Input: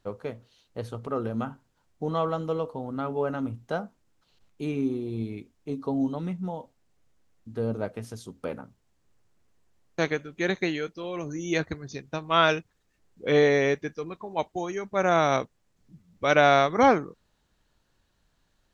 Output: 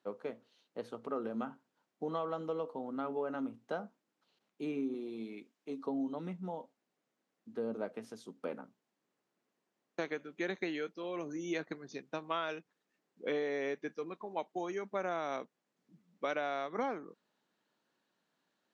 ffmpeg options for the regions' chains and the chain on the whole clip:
-filter_complex "[0:a]asettb=1/sr,asplit=3[a][b][c];[a]atrim=end=4.944[d];[b]atrim=start=4.94:end=5.86,asetpts=PTS-STARTPTS,afade=t=in:d=0.004:c=qsin,afade=t=out:st=0.916:d=0.004:c=qsin,highpass=130,tiltshelf=f=810:g=-3.5[e];[c]atrim=start=5.856[f];[d][e]acrossfade=d=0.004:c1=hsin:c2=qsin[g];[g][f]acrossfade=d=0.004:c1=qsin:c2=hsin,highpass=f=200:w=0.5412,highpass=f=200:w=1.3066,highshelf=f=6.4k:g=-10.5,acompressor=threshold=-26dB:ratio=16,volume=-5.5dB"

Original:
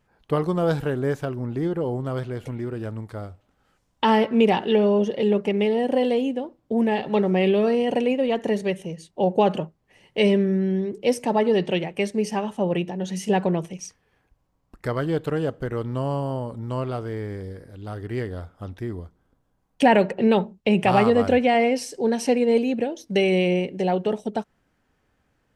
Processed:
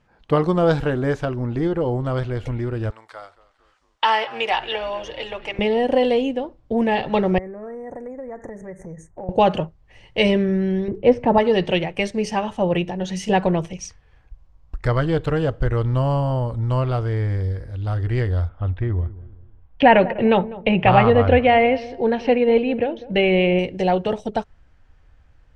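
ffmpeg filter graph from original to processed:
-filter_complex "[0:a]asettb=1/sr,asplit=3[a][b][c];[a]atrim=end=2.904[d];[b]atrim=start=2.9:end=5.59,asetpts=PTS-STARTPTS,afade=t=in:d=0.004:c=qsin,afade=t=out:st=2.686:d=0.004:c=qsin,highpass=850,asplit=5[e][f][g][h][i];[f]adelay=225,afreqshift=-91,volume=-19dB[j];[g]adelay=450,afreqshift=-182,volume=-24.4dB[k];[h]adelay=675,afreqshift=-273,volume=-29.7dB[l];[i]adelay=900,afreqshift=-364,volume=-35.1dB[m];[e][j][k][l][m]amix=inputs=5:normalize=0,atrim=end_sample=118629[n];[c]atrim=start=5.586[o];[d][n]acrossfade=d=0.004:c1=hsin:c2=qsin[p];[p][o]acrossfade=d=0.004:c1=qsin:c2=hsin,asettb=1/sr,asplit=3[q][r][s];[q]atrim=end=7.384[t];[r]atrim=start=7.38:end=9.29,asetpts=PTS-STARTPTS,afade=t=in:d=0.004:c=qsin,afade=t=out:st=1.906:d=0.004:c=qsin,asuperstop=centerf=3600:order=12:qfactor=0.83,acompressor=threshold=-35dB:ratio=5:attack=3.2:release=140:knee=1:detection=peak[u];[s]atrim=start=9.286[v];[t][u]acrossfade=d=0.004:c1=hsin:c2=qsin[w];[w][v]acrossfade=d=0.004:c1=qsin:c2=hsin,asettb=1/sr,asplit=3[x][y][z];[x]atrim=end=10.884[aa];[y]atrim=start=10.88:end=11.38,asetpts=PTS-STARTPTS,afade=t=in:d=0.004:c=qsin,afade=t=out:st=0.496:d=0.004:c=qsin,lowpass=1.9k,lowshelf=f=440:g=6.5[ab];[z]atrim=start=11.376[ac];[aa][ab]acrossfade=d=0.004:c1=hsin:c2=qsin[ad];[ad][ac]acrossfade=d=0.004:c1=qsin:c2=hsin,asettb=1/sr,asplit=3[ae][af][ag];[ae]atrim=end=18.494[ah];[af]atrim=start=18.49:end=23.59,asetpts=PTS-STARTPTS,afade=t=in:d=0.004:c=qsin,afade=t=out:st=5.096:d=0.004:c=qsin,lowpass=f=3.3k:w=0.5412,lowpass=f=3.3k:w=1.3066,asplit=2[ai][aj];[aj]adelay=199,lowpass=f=1k:p=1,volume=-16.5dB,asplit=2[ak][al];[al]adelay=199,lowpass=f=1k:p=1,volume=0.38,asplit=2[am][an];[an]adelay=199,lowpass=f=1k:p=1,volume=0.38[ao];[ai][ak][am][ao]amix=inputs=4:normalize=0,atrim=end_sample=224910[ap];[ag]atrim=start=23.586[aq];[ah][ap]acrossfade=d=0.004:c1=hsin:c2=qsin[ar];[ar][aq]acrossfade=d=0.004:c1=qsin:c2=hsin,lowpass=6k,bandreject=f=410:w=12,asubboost=boost=10:cutoff=66,volume=5.5dB"

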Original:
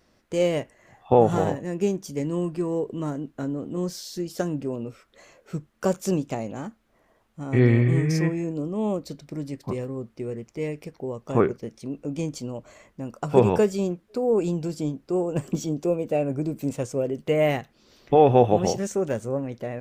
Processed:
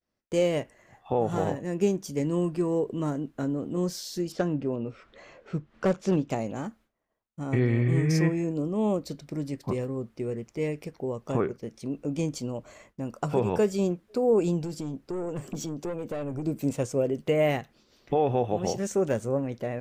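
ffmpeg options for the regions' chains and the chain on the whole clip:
-filter_complex "[0:a]asettb=1/sr,asplit=3[a][b][c];[a]atrim=end=4.324[d];[b]atrim=start=4.32:end=6.3,asetpts=PTS-STARTPTS,afade=t=in:d=0.004:c=qsin,afade=t=out:st=1.976:d=0.004:c=qsin,lowpass=3.8k,acompressor=mode=upward:threshold=-43dB:ratio=2.5:attack=3.2:release=140:knee=2.83:detection=peak,asoftclip=type=hard:threshold=-17.5dB[e];[c]atrim=start=6.296[f];[d][e]acrossfade=d=0.004:c1=hsin:c2=qsin[g];[g][f]acrossfade=d=0.004:c1=qsin:c2=hsin,asettb=1/sr,asplit=3[h][i][j];[h]atrim=end=14.634[k];[i]atrim=start=14.63:end=16.47,asetpts=PTS-STARTPTS,afade=t=in:d=0.004:c=qsin,afade=t=out:st=1.836:d=0.004:c=qsin,aeval=exprs='(tanh(12.6*val(0)+0.3)-tanh(0.3))/12.6':c=same,acompressor=threshold=-29dB:ratio=5:attack=3.2:release=140:knee=1:detection=peak[l];[j]atrim=start=16.466[m];[k][l]acrossfade=d=0.004:c1=hsin:c2=qsin[n];[n][m]acrossfade=d=0.004:c1=qsin:c2=hsin,agate=range=-33dB:threshold=-50dB:ratio=3:detection=peak,alimiter=limit=-14dB:level=0:latency=1:release=431"

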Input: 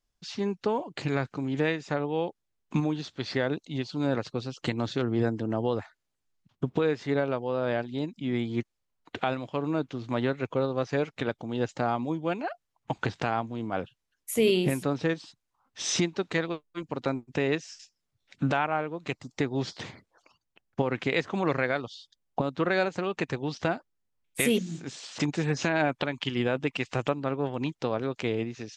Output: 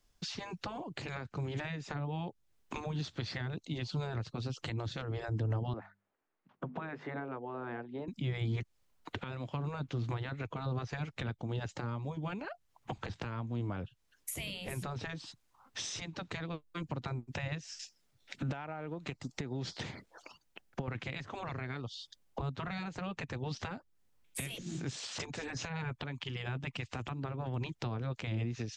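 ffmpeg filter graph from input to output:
-filter_complex "[0:a]asettb=1/sr,asplit=3[a][b][c];[a]atrim=end=5.734[d];[b]atrim=start=5.73:end=8.08,asetpts=PTS-STARTPTS,afade=t=in:d=0.004:c=qsin,afade=t=out:st=2.346:d=0.004:c=qsin,acrossover=split=250 2100:gain=0.0891 1 0.0794[e][f][g];[e][f][g]amix=inputs=3:normalize=0,bandreject=f=50:t=h:w=6,bandreject=f=100:t=h:w=6,bandreject=f=150:t=h:w=6,bandreject=f=200:t=h:w=6,bandreject=f=250:t=h:w=6[h];[c]atrim=start=8.076[i];[d][h]acrossfade=d=0.004:c1=hsin:c2=qsin[j];[j][i]acrossfade=d=0.004:c1=qsin:c2=hsin,asettb=1/sr,asplit=3[k][l][m];[k]atrim=end=17.684[n];[l]atrim=start=17.68:end=20.88,asetpts=PTS-STARTPTS,afade=t=in:d=0.004:c=qsin,afade=t=out:st=3.196:d=0.004:c=qsin,equalizer=f=100:t=o:w=0.85:g=-7,bandreject=f=1.1k:w=14,acompressor=threshold=-30dB:ratio=16:attack=3.2:release=140:knee=1:detection=peak[o];[m]atrim=start=20.876[p];[n][o]acrossfade=d=0.004:c1=hsin:c2=qsin[q];[q][p]acrossfade=d=0.004:c1=qsin:c2=hsin,afftfilt=real='re*lt(hypot(re,im),0.2)':imag='im*lt(hypot(re,im),0.2)':win_size=1024:overlap=0.75,alimiter=limit=-21dB:level=0:latency=1:release=445,acrossover=split=140[r][s];[s]acompressor=threshold=-48dB:ratio=8[t];[r][t]amix=inputs=2:normalize=0,volume=8.5dB"

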